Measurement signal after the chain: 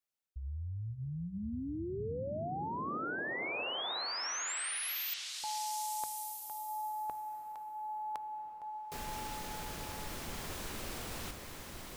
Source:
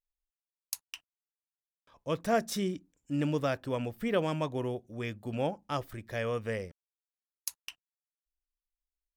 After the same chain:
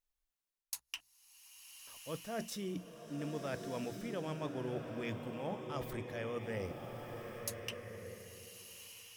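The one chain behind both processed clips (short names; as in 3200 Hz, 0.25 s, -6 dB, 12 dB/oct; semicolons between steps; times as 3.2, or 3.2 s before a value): notches 60/120/180 Hz; reverse; compressor 10:1, threshold -41 dBFS; reverse; bloom reverb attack 1.41 s, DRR 3.5 dB; gain +3 dB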